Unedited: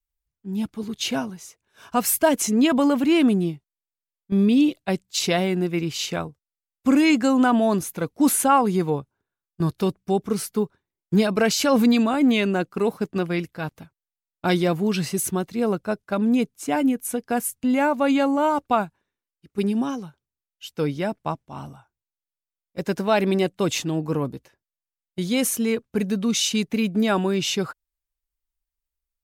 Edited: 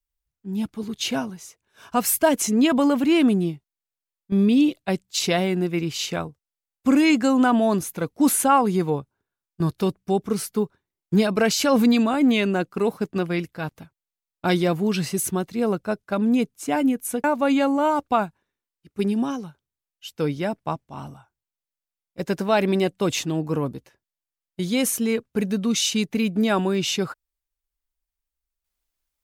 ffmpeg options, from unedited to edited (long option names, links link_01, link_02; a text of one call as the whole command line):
ffmpeg -i in.wav -filter_complex "[0:a]asplit=2[link_01][link_02];[link_01]atrim=end=17.242[link_03];[link_02]atrim=start=17.828[link_04];[link_03][link_04]acrossfade=duration=0.004:curve1=hsin:curve2=hsin" out.wav